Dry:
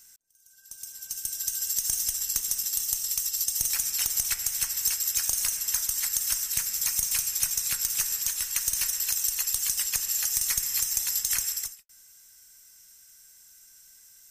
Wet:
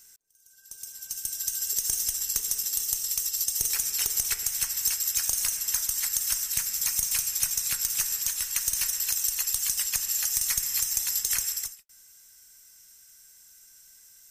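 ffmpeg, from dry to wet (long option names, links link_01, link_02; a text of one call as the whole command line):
ffmpeg -i in.wav -af "asetnsamples=nb_out_samples=441:pad=0,asendcmd='0.88 equalizer g 2;1.73 equalizer g 10.5;4.43 equalizer g 1;6.13 equalizer g -7.5;6.81 equalizer g -1;9.5 equalizer g -8;11.25 equalizer g 3',equalizer=frequency=420:width_type=o:width=0.26:gain=9" out.wav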